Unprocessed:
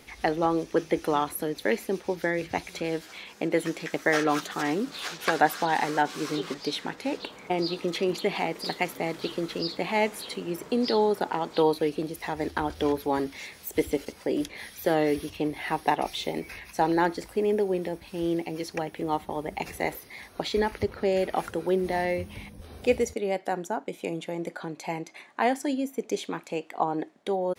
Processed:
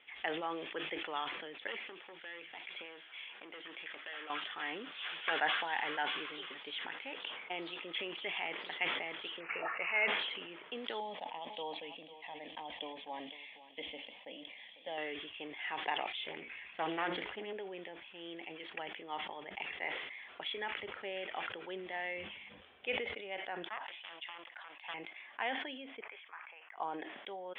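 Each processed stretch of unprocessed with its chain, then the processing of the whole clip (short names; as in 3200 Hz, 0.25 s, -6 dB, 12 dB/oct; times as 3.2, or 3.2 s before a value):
1.67–4.3 overloaded stage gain 24.5 dB + HPF 190 Hz + compressor 3:1, threshold -33 dBFS
9.4–10.08 high shelf 3800 Hz +10.5 dB + comb 1.9 ms, depth 61% + careless resampling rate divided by 8×, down none, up filtered
11–14.98 fixed phaser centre 380 Hz, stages 6 + echo 0.499 s -15.5 dB
16.27–17.53 low shelf 260 Hz +8 dB + notches 60/120/180/240/300/360/420/480/540 Hz + Doppler distortion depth 0.33 ms
23.68–24.94 HPF 790 Hz + comb 1.1 ms, depth 55% + Doppler distortion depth 0.51 ms
26.01–26.77 Butterworth band-pass 1400 Hz, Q 1.1 + air absorption 260 m
whole clip: Chebyshev low-pass 3400 Hz, order 8; differentiator; sustainer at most 43 dB/s; gain +5 dB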